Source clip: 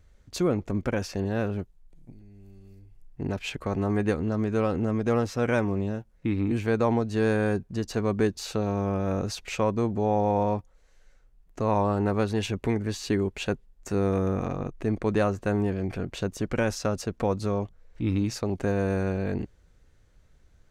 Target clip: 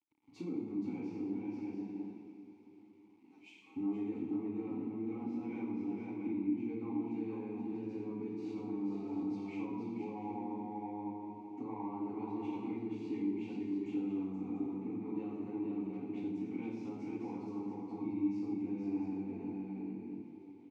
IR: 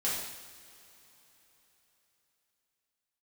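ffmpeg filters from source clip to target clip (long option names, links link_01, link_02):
-filter_complex "[0:a]asoftclip=type=tanh:threshold=-16dB,highpass=frequency=76:width=0.5412,highpass=frequency=76:width=1.3066,bandreject=frequency=50:width_type=h:width=6,bandreject=frequency=100:width_type=h:width=6,asettb=1/sr,asplit=3[link_01][link_02][link_03];[link_01]atrim=end=1.344[link_04];[link_02]atrim=start=1.34:end=3.76,asetpts=PTS-STARTPTS,afade=type=in:duration=0.004:curve=qsin,afade=type=out:start_time=2.416:duration=0.004:curve=qsin,aderivative[link_05];[link_03]atrim=start=3.756[link_06];[link_04][link_05]acrossfade=duration=0.004:curve1=hsin:curve2=qsin[link_07];[link_07][link_06]acrossfade=duration=0.004:curve1=qsin:curve2=hsin,aecho=1:1:80|476|690:0.15|0.631|0.355[link_08];[1:a]atrim=start_sample=2205,asetrate=43659,aresample=44100[link_09];[link_08][link_09]afir=irnorm=-1:irlink=0,acrusher=bits=8:mix=0:aa=0.000001,lowshelf=frequency=490:gain=7,acompressor=threshold=-24dB:ratio=2.5,asplit=3[link_10][link_11][link_12];[link_10]bandpass=frequency=300:width_type=q:width=8,volume=0dB[link_13];[link_11]bandpass=frequency=870:width_type=q:width=8,volume=-6dB[link_14];[link_12]bandpass=frequency=2240:width_type=q:width=8,volume=-9dB[link_15];[link_13][link_14][link_15]amix=inputs=3:normalize=0,volume=-4dB"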